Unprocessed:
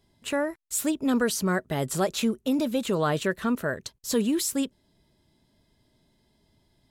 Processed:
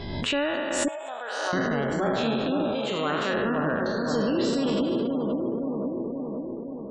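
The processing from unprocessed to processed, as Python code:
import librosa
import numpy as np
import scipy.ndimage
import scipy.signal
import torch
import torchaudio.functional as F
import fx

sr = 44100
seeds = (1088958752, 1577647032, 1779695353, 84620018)

p1 = fx.spec_trails(x, sr, decay_s=2.53)
p2 = scipy.signal.sosfilt(scipy.signal.butter(2, 4300.0, 'lowpass', fs=sr, output='sos'), p1)
p3 = p2 + fx.echo_bbd(p2, sr, ms=524, stages=4096, feedback_pct=64, wet_db=-4, dry=0)
p4 = fx.rider(p3, sr, range_db=4, speed_s=2.0)
p5 = fx.ladder_highpass(p4, sr, hz=640.0, resonance_pct=60, at=(0.88, 1.53))
p6 = fx.leveller(p5, sr, passes=1)
p7 = fx.tilt_eq(p6, sr, slope=2.0, at=(2.75, 3.34))
p8 = fx.spec_gate(p7, sr, threshold_db=-30, keep='strong')
p9 = fx.quant_dither(p8, sr, seeds[0], bits=12, dither='triangular', at=(3.93, 4.33), fade=0.02)
p10 = fx.pre_swell(p9, sr, db_per_s=35.0)
y = p10 * librosa.db_to_amplitude(-7.0)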